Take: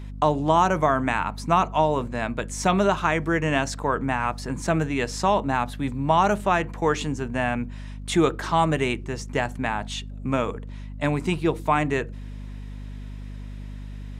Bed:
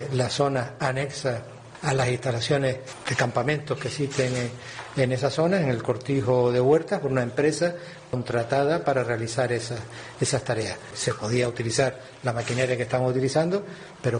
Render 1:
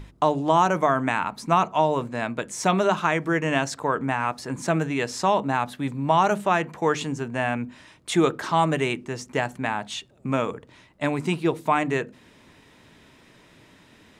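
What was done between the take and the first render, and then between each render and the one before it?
notches 50/100/150/200/250 Hz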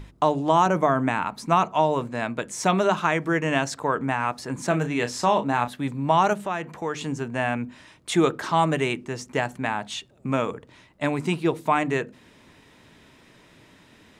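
0.66–1.22 tilt shelf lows +3 dB, about 740 Hz; 4.67–5.68 doubler 33 ms -9.5 dB; 6.33–7.04 compressor 1.5:1, threshold -35 dBFS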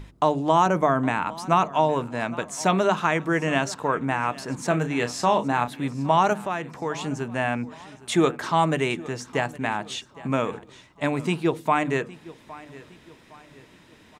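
feedback echo 0.813 s, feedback 41%, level -19.5 dB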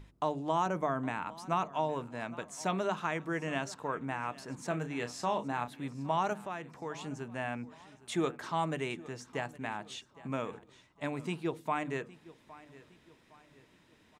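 gain -11.5 dB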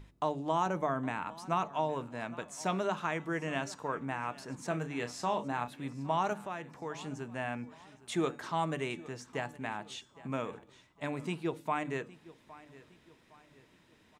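de-hum 286.7 Hz, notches 34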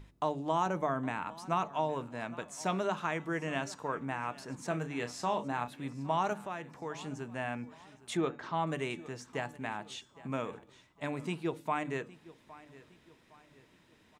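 8.17–8.67 air absorption 150 m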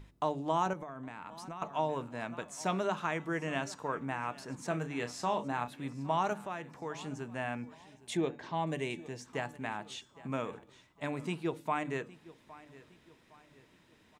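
0.73–1.62 compressor 10:1, threshold -39 dBFS; 7.75–9.26 bell 1300 Hz -14 dB 0.32 oct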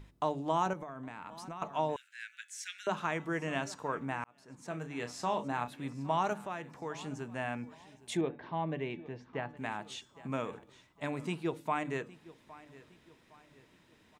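1.96–2.87 steep high-pass 1500 Hz 96 dB/oct; 4.24–5.62 fade in equal-power; 8.21–9.57 air absorption 310 m

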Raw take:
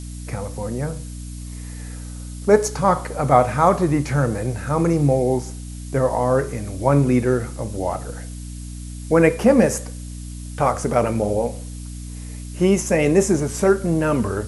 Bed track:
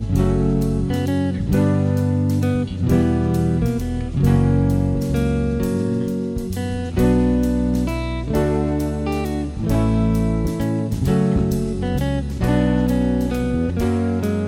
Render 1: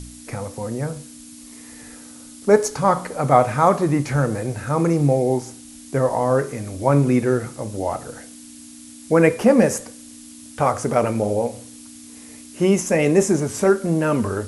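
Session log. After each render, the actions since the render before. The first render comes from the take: de-hum 60 Hz, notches 3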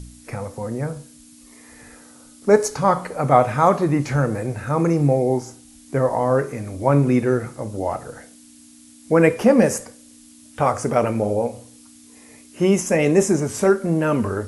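noise print and reduce 6 dB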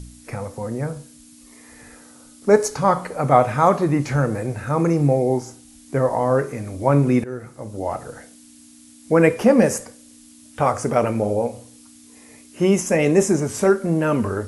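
7.24–8.01 fade in linear, from -15 dB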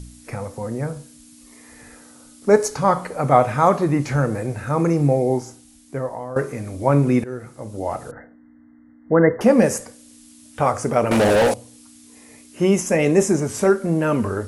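5.36–6.36 fade out, to -15 dB; 8.11–9.41 brick-wall FIR low-pass 2100 Hz; 11.11–11.54 overdrive pedal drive 30 dB, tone 7000 Hz, clips at -9 dBFS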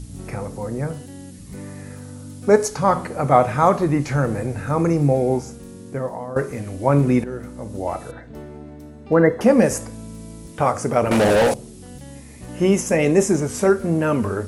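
add bed track -18.5 dB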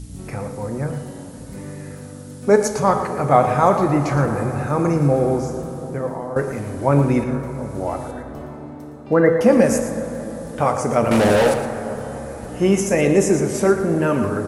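echo 0.115 s -11 dB; plate-style reverb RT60 4.9 s, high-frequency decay 0.3×, DRR 8 dB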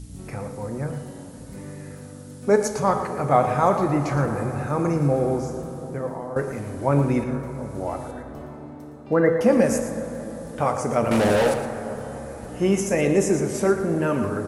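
gain -4 dB

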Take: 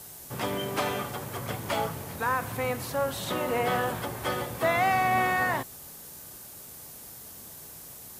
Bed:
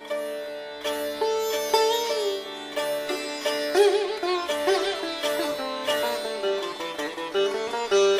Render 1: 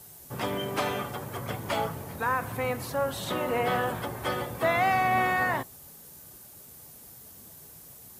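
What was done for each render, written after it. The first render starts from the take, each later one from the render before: denoiser 6 dB, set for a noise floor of -46 dBFS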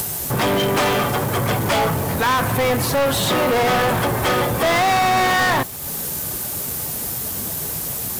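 upward compressor, threshold -36 dBFS; sample leveller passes 5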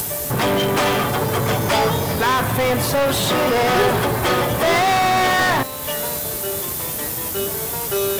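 add bed -2.5 dB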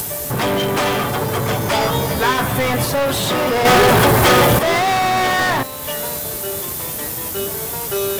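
1.79–2.85 doubler 15 ms -3.5 dB; 3.65–4.59 sample leveller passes 3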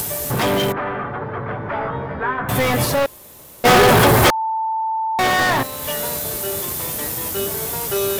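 0.72–2.49 ladder low-pass 2000 Hz, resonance 35%; 3.06–3.64 room tone; 4.3–5.19 bleep 887 Hz -18.5 dBFS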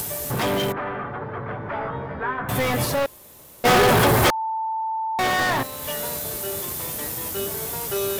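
gain -4.5 dB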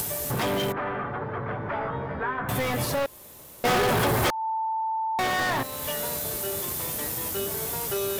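compressor 2:1, threshold -27 dBFS, peak gain reduction 7 dB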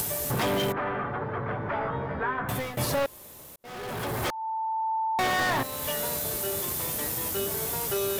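2.29–2.77 fade out equal-power, to -16.5 dB; 3.56–4.93 fade in

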